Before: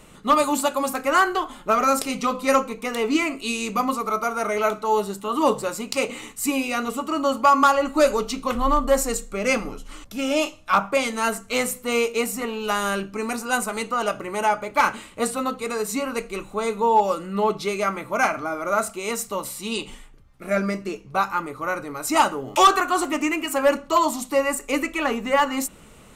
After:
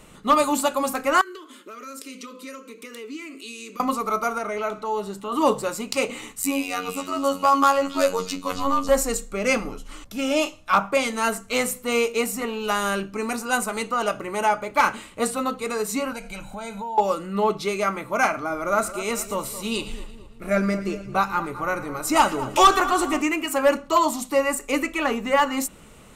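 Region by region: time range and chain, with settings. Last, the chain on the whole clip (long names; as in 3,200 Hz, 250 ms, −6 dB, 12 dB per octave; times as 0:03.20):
0:01.21–0:03.80: high-pass filter 230 Hz 24 dB per octave + downward compressor 3 to 1, threshold −36 dBFS + phaser with its sweep stopped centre 320 Hz, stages 4
0:04.38–0:05.32: high-shelf EQ 7,900 Hz −9 dB + downward compressor 1.5 to 1, threshold −31 dBFS
0:06.42–0:08.89: high-shelf EQ 12,000 Hz +7.5 dB + phases set to zero 92.1 Hz + echo through a band-pass that steps 274 ms, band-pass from 3,500 Hz, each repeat 0.7 octaves, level −5.5 dB
0:16.12–0:16.98: comb filter 1.3 ms, depth 88% + downward compressor 4 to 1, threshold −31 dBFS
0:18.50–0:23.22: low-shelf EQ 100 Hz +11 dB + echo with a time of its own for lows and highs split 1,400 Hz, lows 218 ms, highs 114 ms, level −14 dB
whole clip: no processing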